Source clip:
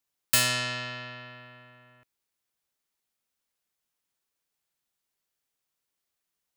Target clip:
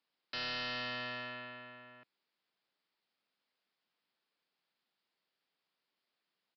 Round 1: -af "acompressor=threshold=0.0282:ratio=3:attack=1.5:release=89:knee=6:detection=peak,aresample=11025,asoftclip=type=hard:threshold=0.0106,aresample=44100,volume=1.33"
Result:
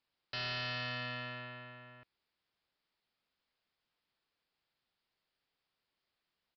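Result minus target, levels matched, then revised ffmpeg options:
125 Hz band +9.0 dB
-af "acompressor=threshold=0.0282:ratio=3:attack=1.5:release=89:knee=6:detection=peak,highpass=f=160:w=0.5412,highpass=f=160:w=1.3066,aresample=11025,asoftclip=type=hard:threshold=0.0106,aresample=44100,volume=1.33"

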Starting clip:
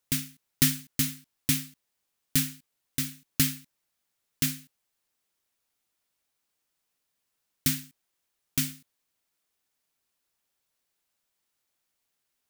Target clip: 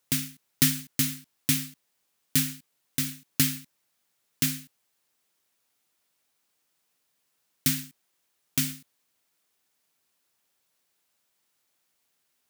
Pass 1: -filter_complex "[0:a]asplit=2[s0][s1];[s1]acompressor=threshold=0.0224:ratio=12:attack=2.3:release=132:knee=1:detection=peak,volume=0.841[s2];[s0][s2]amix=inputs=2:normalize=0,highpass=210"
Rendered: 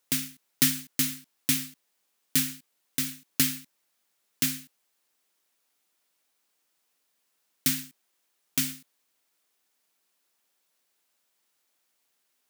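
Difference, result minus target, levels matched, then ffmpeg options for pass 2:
125 Hz band -6.0 dB
-filter_complex "[0:a]asplit=2[s0][s1];[s1]acompressor=threshold=0.0224:ratio=12:attack=2.3:release=132:knee=1:detection=peak,volume=0.841[s2];[s0][s2]amix=inputs=2:normalize=0,highpass=100"

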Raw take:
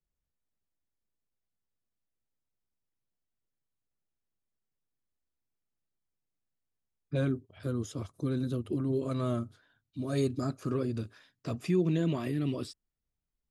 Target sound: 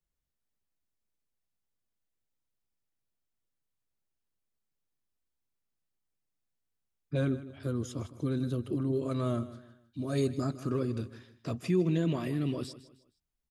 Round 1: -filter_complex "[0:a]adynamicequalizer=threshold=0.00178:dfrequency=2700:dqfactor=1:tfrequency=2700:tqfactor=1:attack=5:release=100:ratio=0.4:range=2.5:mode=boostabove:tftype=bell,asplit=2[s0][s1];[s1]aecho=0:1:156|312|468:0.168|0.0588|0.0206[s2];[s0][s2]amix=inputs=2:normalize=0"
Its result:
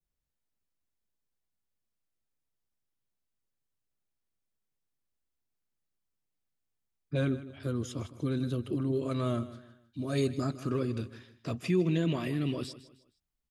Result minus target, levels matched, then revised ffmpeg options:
2 kHz band +3.0 dB
-filter_complex "[0:a]asplit=2[s0][s1];[s1]aecho=0:1:156|312|468:0.168|0.0588|0.0206[s2];[s0][s2]amix=inputs=2:normalize=0"

